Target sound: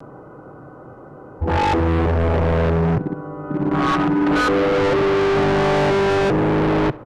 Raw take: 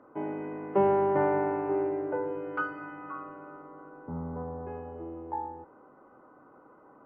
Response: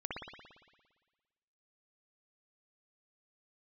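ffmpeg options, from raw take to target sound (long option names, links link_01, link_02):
-filter_complex "[0:a]areverse,afwtdn=0.0178,equalizer=frequency=125:width_type=o:width=1:gain=7,equalizer=frequency=250:width_type=o:width=1:gain=-10,equalizer=frequency=500:width_type=o:width=1:gain=-4,equalizer=frequency=1000:width_type=o:width=1:gain=-11,equalizer=frequency=2000:width_type=o:width=1:gain=-10,asplit=2[link_01][link_02];[link_02]acompressor=threshold=-44dB:ratio=6,volume=-1.5dB[link_03];[link_01][link_03]amix=inputs=2:normalize=0,apsyclip=36dB,asoftclip=type=hard:threshold=-16.5dB,aemphasis=mode=reproduction:type=50fm,asplit=2[link_04][link_05];[link_05]adelay=68,lowpass=frequency=2700:poles=1,volume=-19dB,asplit=2[link_06][link_07];[link_07]adelay=68,lowpass=frequency=2700:poles=1,volume=0.53,asplit=2[link_08][link_09];[link_09]adelay=68,lowpass=frequency=2700:poles=1,volume=0.53,asplit=2[link_10][link_11];[link_11]adelay=68,lowpass=frequency=2700:poles=1,volume=0.53[link_12];[link_06][link_08][link_10][link_12]amix=inputs=4:normalize=0[link_13];[link_04][link_13]amix=inputs=2:normalize=0"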